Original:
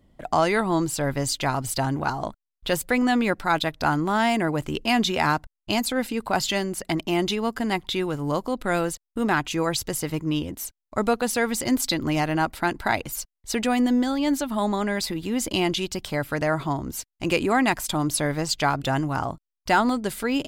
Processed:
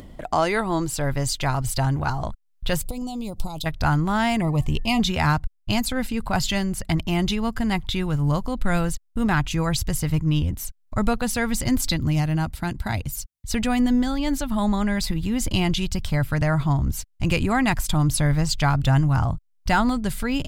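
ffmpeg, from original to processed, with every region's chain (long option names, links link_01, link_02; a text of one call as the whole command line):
ffmpeg -i in.wav -filter_complex "[0:a]asettb=1/sr,asplit=3[link_01][link_02][link_03];[link_01]atrim=end=2.854[link_04];[link_02]atrim=start=2.85:end=3.66,asetpts=PTS-STARTPTS,afade=type=in:duration=0.004:curve=qsin,afade=type=out:start_time=0.806:duration=0.004:curve=qsin,highshelf=frequency=5200:gain=9,acompressor=threshold=-26dB:ratio=5:attack=3.2:release=140:knee=1:detection=peak,asuperstop=centerf=1700:order=4:qfactor=0.71[link_05];[link_03]atrim=start=3.656[link_06];[link_04][link_05]acrossfade=duration=0.004:curve1=hsin:curve2=qsin[link_07];[link_07][link_06]acrossfade=duration=0.004:curve1=qsin:curve2=hsin,asettb=1/sr,asplit=3[link_08][link_09][link_10];[link_08]atrim=end=4.414[link_11];[link_09]atrim=start=4.41:end=5,asetpts=PTS-STARTPTS,afade=type=in:duration=0.004:curve=qsin,afade=type=out:start_time=0.586:duration=0.004:curve=qsin,bandreject=frequency=368.4:width_type=h:width=4,bandreject=frequency=736.8:width_type=h:width=4,bandreject=frequency=1105.2:width_type=h:width=4,bandreject=frequency=1473.6:width_type=h:width=4,bandreject=frequency=1842:width_type=h:width=4,aeval=exprs='val(0)+0.0141*sin(2*PI*1800*n/s)':channel_layout=same,asuperstop=centerf=1600:order=8:qfactor=2[link_12];[link_10]atrim=start=4.996[link_13];[link_11][link_12]acrossfade=duration=0.004:curve1=hsin:curve2=qsin[link_14];[link_14][link_13]acrossfade=duration=0.004:curve1=qsin:curve2=hsin,asettb=1/sr,asplit=3[link_15][link_16][link_17];[link_15]atrim=end=11.964[link_18];[link_16]atrim=start=11.96:end=13.51,asetpts=PTS-STARTPTS,afade=type=in:duration=0.004:curve=qsin,afade=type=out:start_time=1.546:duration=0.004:curve=qsin,highpass=frequency=70:poles=1,equalizer=frequency=1300:width_type=o:width=2.8:gain=-7[link_19];[link_17]atrim=start=13.506[link_20];[link_18][link_19]acrossfade=duration=0.004:curve1=hsin:curve2=qsin[link_21];[link_21][link_20]acrossfade=duration=0.004:curve1=qsin:curve2=hsin,asubboost=boost=10.5:cutoff=110,acompressor=mode=upward:threshold=-29dB:ratio=2.5" out.wav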